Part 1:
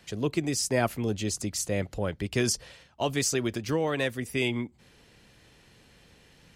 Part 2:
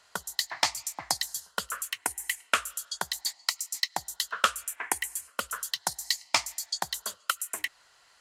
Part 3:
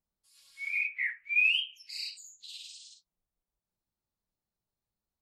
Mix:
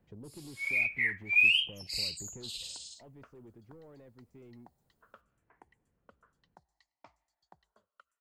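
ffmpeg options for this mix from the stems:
ffmpeg -i stem1.wav -i stem2.wav -i stem3.wav -filter_complex "[0:a]asoftclip=type=tanh:threshold=-28dB,volume=-8.5dB,afade=type=out:start_time=2.75:duration=0.24:silence=0.334965[link_01];[1:a]adelay=700,volume=-19dB[link_02];[2:a]equalizer=frequency=660:width=0.75:gain=10,bandreject=frequency=5800:width=15,dynaudnorm=framelen=130:gausssize=3:maxgain=9dB,volume=0.5dB[link_03];[link_01][link_02]amix=inputs=2:normalize=0,lowpass=1400,acompressor=threshold=-44dB:ratio=6,volume=0dB[link_04];[link_03][link_04]amix=inputs=2:normalize=0,equalizer=frequency=1900:width_type=o:width=2.9:gain=-9.5" out.wav

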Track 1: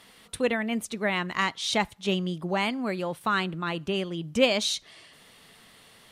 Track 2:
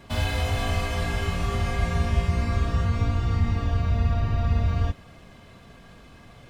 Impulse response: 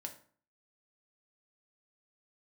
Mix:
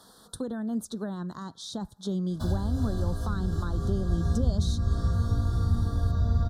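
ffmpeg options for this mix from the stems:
-filter_complex "[0:a]alimiter=limit=-18.5dB:level=0:latency=1:release=26,volume=1.5dB[link_01];[1:a]equalizer=frequency=860:width=1.5:gain=-5.5,adelay=2300,volume=-2dB[link_02];[link_01][link_02]amix=inputs=2:normalize=0,acrossover=split=290[link_03][link_04];[link_04]acompressor=threshold=-37dB:ratio=6[link_05];[link_03][link_05]amix=inputs=2:normalize=0,asuperstop=centerf=2400:order=8:qfactor=1.2"

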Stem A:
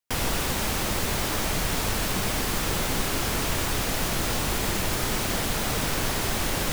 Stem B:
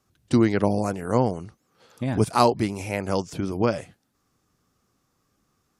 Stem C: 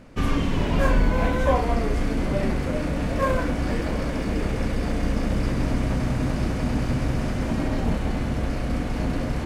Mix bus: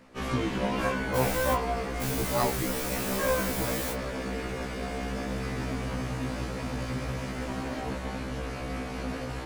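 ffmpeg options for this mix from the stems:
ffmpeg -i stem1.wav -i stem2.wav -i stem3.wav -filter_complex "[0:a]highshelf=frequency=6800:gain=10.5,adelay=1050,volume=-9.5dB[link_01];[1:a]volume=-8dB,asplit=2[link_02][link_03];[2:a]lowshelf=frequency=230:gain=-11.5,volume=-0.5dB[link_04];[link_03]apad=whole_len=342793[link_05];[link_01][link_05]sidechaingate=range=-33dB:threshold=-51dB:ratio=16:detection=peak[link_06];[link_06][link_02][link_04]amix=inputs=3:normalize=0,afftfilt=real='re*1.73*eq(mod(b,3),0)':imag='im*1.73*eq(mod(b,3),0)':win_size=2048:overlap=0.75" out.wav

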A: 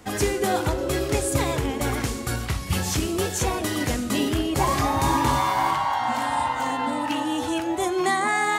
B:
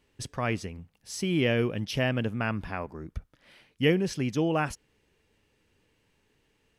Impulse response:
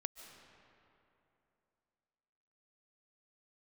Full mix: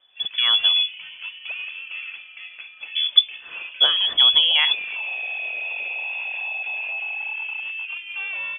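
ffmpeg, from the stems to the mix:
-filter_complex "[0:a]bandpass=frequency=910:width_type=q:width=9.1:csg=0,alimiter=level_in=4dB:limit=-24dB:level=0:latency=1:release=48,volume=-4dB,volume=34dB,asoftclip=hard,volume=-34dB,adelay=100,volume=-3dB[link_01];[1:a]alimiter=limit=-16dB:level=0:latency=1:release=353,acompressor=threshold=-29dB:ratio=4,volume=3dB,asplit=3[link_02][link_03][link_04];[link_02]atrim=end=0.94,asetpts=PTS-STARTPTS,afade=type=out:start_time=0.936:duration=0.004:curve=hsin[link_05];[link_03]atrim=start=0.94:end=2.95,asetpts=PTS-STARTPTS,volume=0[link_06];[link_04]atrim=start=2.95,asetpts=PTS-STARTPTS,afade=type=in:duration=0.004:curve=hsin[link_07];[link_05][link_06][link_07]concat=n=3:v=0:a=1[link_08];[link_01][link_08]amix=inputs=2:normalize=0,lowshelf=frequency=150:width_type=q:width=1.5:gain=10,dynaudnorm=framelen=340:gausssize=3:maxgain=11dB,lowpass=frequency=3000:width_type=q:width=0.5098,lowpass=frequency=3000:width_type=q:width=0.6013,lowpass=frequency=3000:width_type=q:width=0.9,lowpass=frequency=3000:width_type=q:width=2.563,afreqshift=-3500"

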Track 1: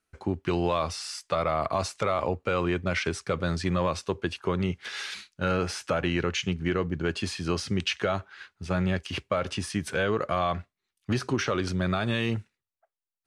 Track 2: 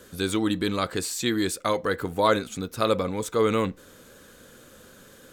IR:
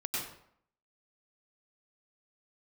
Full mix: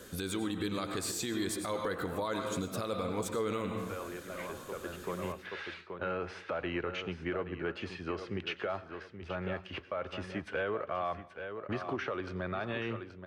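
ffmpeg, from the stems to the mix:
-filter_complex "[0:a]aemphasis=mode=reproduction:type=bsi,agate=range=-33dB:threshold=-42dB:ratio=3:detection=peak,acrossover=split=350 3300:gain=0.112 1 0.224[link_01][link_02][link_03];[link_01][link_02][link_03]amix=inputs=3:normalize=0,adelay=600,volume=-3.5dB,asplit=3[link_04][link_05][link_06];[link_05]volume=-22.5dB[link_07];[link_06]volume=-10.5dB[link_08];[1:a]volume=-2.5dB,asplit=3[link_09][link_10][link_11];[link_10]volume=-9dB[link_12];[link_11]apad=whole_len=611617[link_13];[link_04][link_13]sidechaincompress=threshold=-51dB:ratio=8:attack=16:release=943[link_14];[2:a]atrim=start_sample=2205[link_15];[link_07][link_12]amix=inputs=2:normalize=0[link_16];[link_16][link_15]afir=irnorm=-1:irlink=0[link_17];[link_08]aecho=0:1:828|1656|2484|3312:1|0.24|0.0576|0.0138[link_18];[link_14][link_09][link_17][link_18]amix=inputs=4:normalize=0,alimiter=level_in=1dB:limit=-24dB:level=0:latency=1:release=260,volume=-1dB"

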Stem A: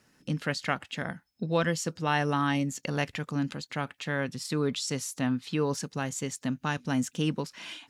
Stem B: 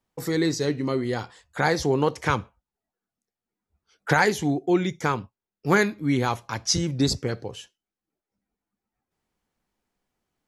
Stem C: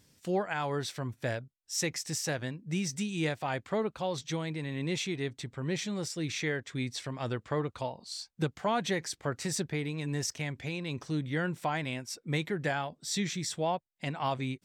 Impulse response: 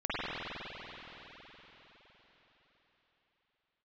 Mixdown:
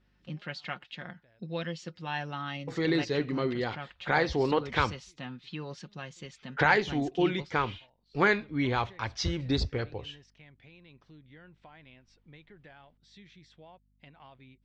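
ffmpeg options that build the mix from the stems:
-filter_complex "[0:a]aecho=1:1:5.6:0.54,adynamicequalizer=threshold=0.00562:dfrequency=3100:dqfactor=0.7:tfrequency=3100:tqfactor=0.7:attack=5:release=100:ratio=0.375:range=3.5:mode=boostabove:tftype=highshelf,volume=-11dB,asplit=2[link_01][link_02];[1:a]asubboost=boost=10:cutoff=51,adelay=2500,volume=-4dB[link_03];[2:a]acompressor=threshold=-39dB:ratio=2.5,aeval=exprs='val(0)+0.002*(sin(2*PI*50*n/s)+sin(2*PI*2*50*n/s)/2+sin(2*PI*3*50*n/s)/3+sin(2*PI*4*50*n/s)/4+sin(2*PI*5*50*n/s)/5)':channel_layout=same,volume=-15dB[link_04];[link_02]apad=whole_len=645808[link_05];[link_04][link_05]sidechaincompress=threshold=-47dB:ratio=8:attack=10:release=1190[link_06];[link_01][link_03][link_06]amix=inputs=3:normalize=0,lowpass=frequency=3500:width=0.5412,lowpass=frequency=3500:width=1.3066,crystalizer=i=2.5:c=0"

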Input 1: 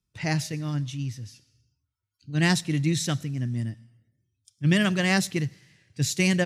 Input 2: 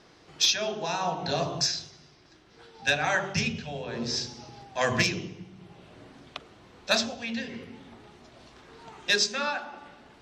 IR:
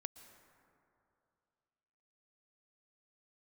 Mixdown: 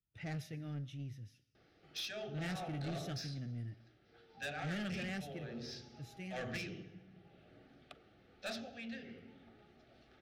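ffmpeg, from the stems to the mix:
-filter_complex "[0:a]bandreject=frequency=4500:width=8.1,flanger=delay=2.2:depth=9.8:regen=-78:speed=0.54:shape=sinusoidal,volume=-7.5dB,afade=type=out:start_time=4.8:duration=0.8:silence=0.266073[link_01];[1:a]adelay=1550,volume=-13dB,asplit=2[link_02][link_03];[link_03]volume=-10dB[link_04];[2:a]atrim=start_sample=2205[link_05];[link_04][link_05]afir=irnorm=-1:irlink=0[link_06];[link_01][link_02][link_06]amix=inputs=3:normalize=0,equalizer=frequency=7700:width_type=o:width=0.98:gain=-15,asoftclip=type=tanh:threshold=-36.5dB,asuperstop=centerf=1000:order=4:qfactor=3.2"

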